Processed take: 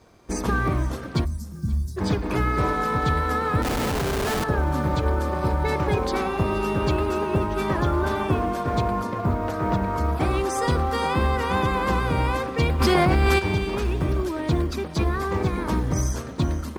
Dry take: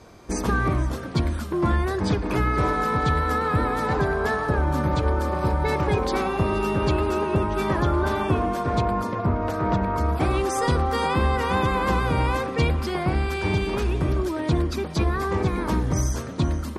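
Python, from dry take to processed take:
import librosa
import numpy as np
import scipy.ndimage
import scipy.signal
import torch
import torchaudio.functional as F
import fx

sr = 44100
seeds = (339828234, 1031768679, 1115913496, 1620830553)

p1 = fx.law_mismatch(x, sr, coded='A')
p2 = fx.ellip_bandstop(p1, sr, low_hz=200.0, high_hz=5400.0, order=3, stop_db=40, at=(1.24, 1.96), fade=0.02)
p3 = fx.schmitt(p2, sr, flips_db=-26.5, at=(3.62, 4.44))
p4 = p3 + fx.echo_feedback(p3, sr, ms=531, feedback_pct=32, wet_db=-22, dry=0)
y = fx.env_flatten(p4, sr, amount_pct=100, at=(12.79, 13.38), fade=0.02)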